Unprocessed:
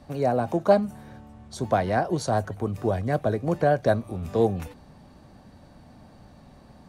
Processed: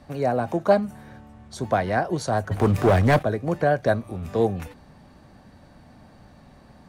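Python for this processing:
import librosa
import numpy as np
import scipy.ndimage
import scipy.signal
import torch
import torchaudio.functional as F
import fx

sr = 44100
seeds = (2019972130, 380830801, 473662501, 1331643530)

y = fx.peak_eq(x, sr, hz=1800.0, db=4.0, octaves=1.1)
y = fx.leveller(y, sr, passes=3, at=(2.51, 3.23))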